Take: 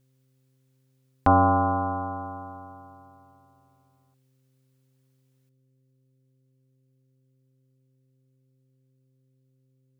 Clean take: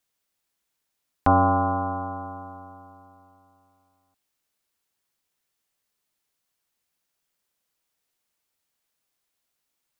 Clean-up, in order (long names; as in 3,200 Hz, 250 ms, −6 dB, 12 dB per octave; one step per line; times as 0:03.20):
hum removal 131 Hz, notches 4
level 0 dB, from 0:05.49 +11 dB